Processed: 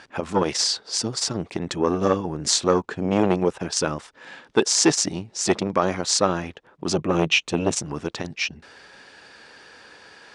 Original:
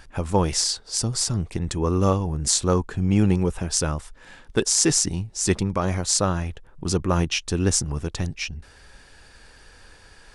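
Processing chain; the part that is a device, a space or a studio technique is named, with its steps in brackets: 6.94–7.82 thirty-one-band EQ 100 Hz +4 dB, 160 Hz +6 dB, 1600 Hz -5 dB, 2500 Hz +5 dB, 5000 Hz -7 dB; public-address speaker with an overloaded transformer (core saturation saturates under 790 Hz; BPF 230–5300 Hz); gain +5.5 dB

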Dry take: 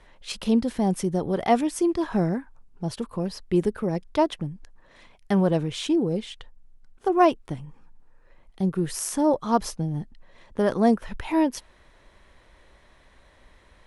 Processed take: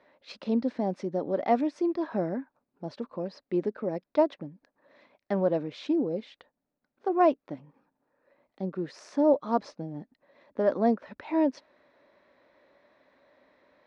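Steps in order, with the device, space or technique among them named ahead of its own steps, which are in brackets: kitchen radio (speaker cabinet 220–4500 Hz, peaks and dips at 270 Hz +8 dB, 580 Hz +9 dB, 3100 Hz -9 dB); gain -6.5 dB

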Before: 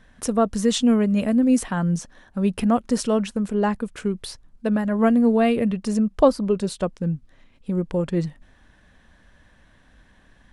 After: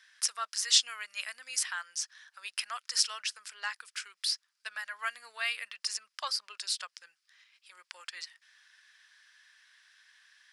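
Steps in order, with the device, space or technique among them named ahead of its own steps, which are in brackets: headphones lying on a table (HPF 1500 Hz 24 dB/oct; bell 5000 Hz +11 dB 0.41 oct)

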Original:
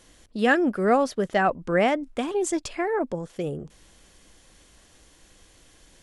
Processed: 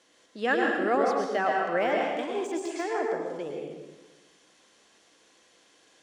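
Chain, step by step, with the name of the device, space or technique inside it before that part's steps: supermarket ceiling speaker (BPF 310–6800 Hz; reverb RT60 1.1 s, pre-delay 0.1 s, DRR -0.5 dB); 1.26–2.96 de-esser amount 80%; gain -5.5 dB

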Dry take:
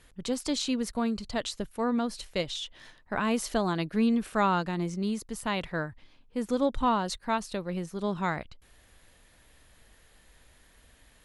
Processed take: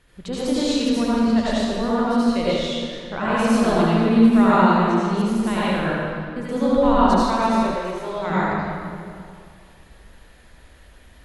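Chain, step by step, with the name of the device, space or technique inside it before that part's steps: swimming-pool hall (reverb RT60 2.3 s, pre-delay 71 ms, DRR -9.5 dB; high shelf 5400 Hz -8 dB); 7.74–8.3 bell 200 Hz -15 dB 1 oct

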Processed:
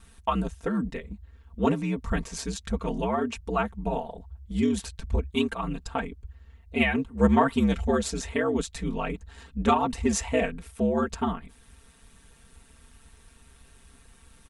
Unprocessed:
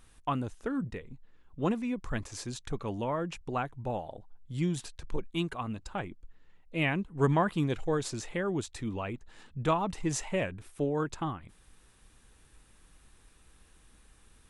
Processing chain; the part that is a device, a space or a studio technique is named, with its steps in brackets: ring-modulated robot voice (ring modulator 68 Hz; comb 4.4 ms, depth 79%); gain +6.5 dB

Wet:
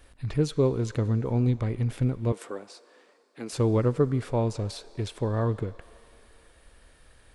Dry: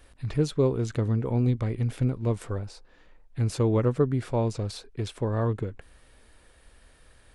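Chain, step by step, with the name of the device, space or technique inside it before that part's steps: filtered reverb send (on a send: HPF 560 Hz 12 dB/oct + LPF 8900 Hz 12 dB/oct + reverb RT60 3.4 s, pre-delay 35 ms, DRR 16.5 dB); 2.32–3.53 on the sum: HPF 250 Hz 24 dB/oct

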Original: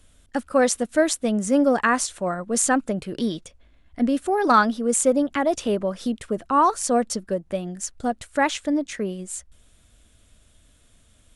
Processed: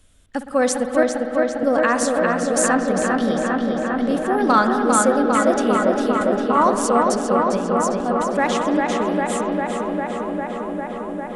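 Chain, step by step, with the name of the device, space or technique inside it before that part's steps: 1.03–1.63 inverse Chebyshev low-pass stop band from 640 Hz, stop band 80 dB; dub delay into a spring reverb (darkening echo 0.401 s, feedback 85%, low-pass 4300 Hz, level -3 dB; spring tank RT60 3.9 s, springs 56 ms, chirp 40 ms, DRR 7 dB)

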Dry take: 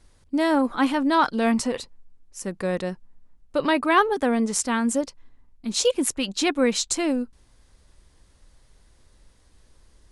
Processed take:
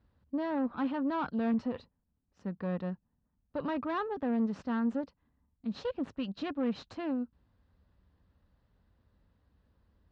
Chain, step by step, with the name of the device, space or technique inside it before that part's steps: guitar amplifier (tube stage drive 20 dB, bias 0.55; tone controls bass +11 dB, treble -11 dB; speaker cabinet 97–4200 Hz, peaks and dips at 130 Hz -8 dB, 360 Hz -5 dB, 2200 Hz -8 dB, 3300 Hz -4 dB); gain -8.5 dB

